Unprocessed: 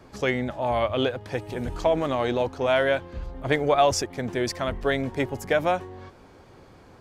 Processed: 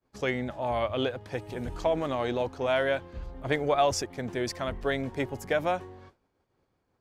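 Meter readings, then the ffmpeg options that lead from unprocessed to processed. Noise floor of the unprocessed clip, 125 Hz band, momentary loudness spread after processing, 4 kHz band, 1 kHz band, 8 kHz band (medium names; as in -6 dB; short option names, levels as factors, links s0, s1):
-51 dBFS, -4.5 dB, 10 LU, -4.5 dB, -4.5 dB, -4.5 dB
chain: -af "agate=range=0.0224:threshold=0.0141:ratio=3:detection=peak,volume=0.596"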